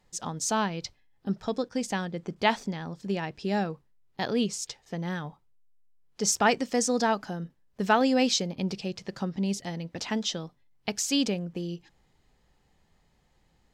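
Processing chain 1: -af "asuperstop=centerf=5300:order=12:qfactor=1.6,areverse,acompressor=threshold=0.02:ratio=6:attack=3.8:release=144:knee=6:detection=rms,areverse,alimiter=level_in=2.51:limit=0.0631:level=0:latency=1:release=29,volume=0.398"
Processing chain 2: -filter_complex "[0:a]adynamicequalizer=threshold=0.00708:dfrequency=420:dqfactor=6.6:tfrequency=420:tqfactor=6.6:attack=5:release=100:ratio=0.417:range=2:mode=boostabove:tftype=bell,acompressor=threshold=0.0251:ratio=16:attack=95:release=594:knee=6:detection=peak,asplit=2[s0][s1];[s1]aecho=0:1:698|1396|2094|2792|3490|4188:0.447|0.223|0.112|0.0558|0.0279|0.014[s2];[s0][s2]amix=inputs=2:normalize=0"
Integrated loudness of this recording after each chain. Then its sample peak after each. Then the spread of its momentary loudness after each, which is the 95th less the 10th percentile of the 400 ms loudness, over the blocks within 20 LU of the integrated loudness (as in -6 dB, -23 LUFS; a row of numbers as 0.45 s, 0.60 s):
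-42.5 LUFS, -35.0 LUFS; -32.0 dBFS, -16.0 dBFS; 7 LU, 11 LU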